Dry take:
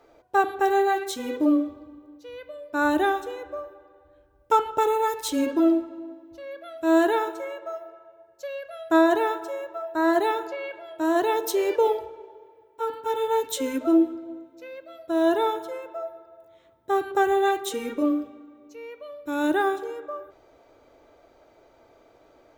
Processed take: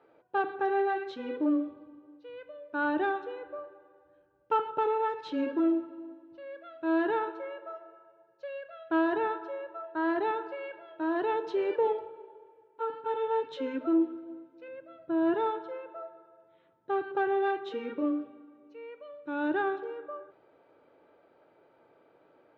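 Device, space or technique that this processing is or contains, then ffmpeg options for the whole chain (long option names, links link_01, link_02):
overdrive pedal into a guitar cabinet: -filter_complex "[0:a]asettb=1/sr,asplit=3[link_01][link_02][link_03];[link_01]atrim=end=14.684[link_04];[link_02]atrim=start=14.68:end=15.34,asetpts=PTS-STARTPTS,afade=type=in:duration=0.004:curve=qsin,afade=type=out:start_time=0.656:duration=0.004:curve=qsin,bass=frequency=250:gain=12,treble=frequency=4000:gain=-13[link_05];[link_03]atrim=start=15.336[link_06];[link_04][link_05]acrossfade=duration=0.004:curve1=hsin:curve2=qsin[link_07];[link_07][link_06]acrossfade=duration=0.004:curve1=qsin:curve2=hsin,asplit=2[link_08][link_09];[link_09]highpass=frequency=720:poles=1,volume=12dB,asoftclip=type=tanh:threshold=-7.5dB[link_10];[link_08][link_10]amix=inputs=2:normalize=0,lowpass=frequency=1700:poles=1,volume=-6dB,highpass=110,equalizer=frequency=120:width_type=q:width=4:gain=4,equalizer=frequency=170:width_type=q:width=4:gain=9,equalizer=frequency=680:width_type=q:width=4:gain=-8,equalizer=frequency=1100:width_type=q:width=4:gain=-5,equalizer=frequency=2100:width_type=q:width=4:gain=-6,equalizer=frequency=3500:width_type=q:width=4:gain=-4,lowpass=frequency=3700:width=0.5412,lowpass=frequency=3700:width=1.3066,volume=-6.5dB"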